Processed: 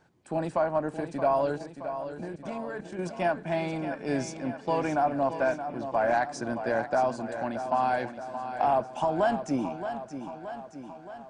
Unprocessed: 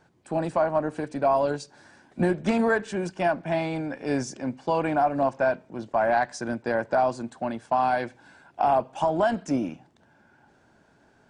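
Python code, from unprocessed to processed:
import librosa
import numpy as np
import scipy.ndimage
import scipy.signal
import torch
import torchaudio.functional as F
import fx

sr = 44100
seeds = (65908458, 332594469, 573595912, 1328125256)

y = fx.level_steps(x, sr, step_db=17, at=(1.58, 2.99))
y = fx.echo_feedback(y, sr, ms=623, feedback_pct=59, wet_db=-10)
y = F.gain(torch.from_numpy(y), -3.0).numpy()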